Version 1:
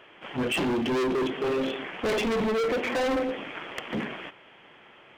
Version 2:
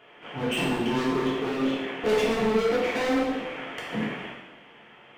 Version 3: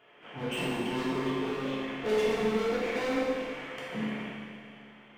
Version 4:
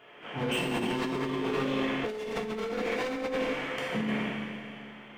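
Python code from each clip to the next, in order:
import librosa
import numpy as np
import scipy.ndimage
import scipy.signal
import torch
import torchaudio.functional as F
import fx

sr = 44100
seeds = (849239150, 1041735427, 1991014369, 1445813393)

y1 = fx.rev_double_slope(x, sr, seeds[0], early_s=0.95, late_s=2.5, knee_db=-18, drr_db=-5.0)
y1 = y1 * 10.0 ** (-5.0 / 20.0)
y2 = fx.rev_schroeder(y1, sr, rt60_s=2.4, comb_ms=29, drr_db=2.5)
y2 = y2 * 10.0 ** (-7.0 / 20.0)
y3 = fx.over_compress(y2, sr, threshold_db=-34.0, ratio=-1.0)
y3 = y3 * 10.0 ** (3.0 / 20.0)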